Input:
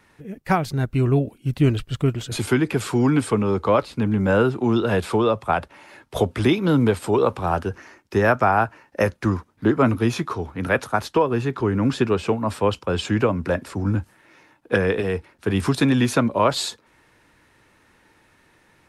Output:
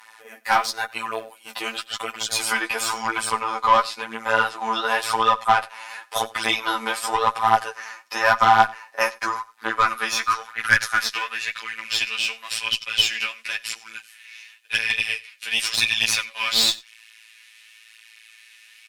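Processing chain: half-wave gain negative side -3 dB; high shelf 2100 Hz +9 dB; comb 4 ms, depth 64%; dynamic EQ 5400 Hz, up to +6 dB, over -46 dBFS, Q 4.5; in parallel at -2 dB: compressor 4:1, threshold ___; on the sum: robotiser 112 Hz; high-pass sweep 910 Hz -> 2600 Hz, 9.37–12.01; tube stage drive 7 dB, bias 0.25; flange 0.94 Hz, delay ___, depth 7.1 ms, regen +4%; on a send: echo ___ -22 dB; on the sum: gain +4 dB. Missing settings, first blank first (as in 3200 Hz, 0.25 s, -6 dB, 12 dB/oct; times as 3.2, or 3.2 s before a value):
-26 dBFS, 7.7 ms, 91 ms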